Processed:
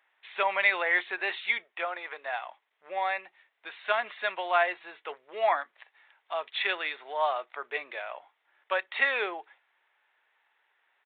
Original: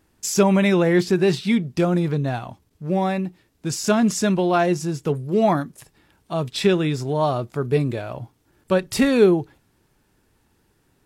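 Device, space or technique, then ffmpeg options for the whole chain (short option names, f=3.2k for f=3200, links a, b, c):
musical greeting card: -filter_complex "[0:a]aresample=8000,aresample=44100,highpass=f=690:w=0.5412,highpass=f=690:w=1.3066,equalizer=f=2k:t=o:w=0.51:g=8.5,asettb=1/sr,asplit=3[a][b][c];[a]atrim=end=1.644[d];[b]atrim=start=1.64:end=2.33,asetpts=PTS-STARTPTS,afade=t=in:d=0.004:c=qsin,afade=t=out:st=0.686:d=0.004:c=qsin,bass=f=250:g=-14,treble=f=4k:g=-7[e];[c]atrim=start=2.326[f];[d][e]acrossfade=d=0.004:c1=hsin:c2=qsin[g];[g][f]acrossfade=d=0.004:c1=qsin:c2=hsin,volume=-3dB"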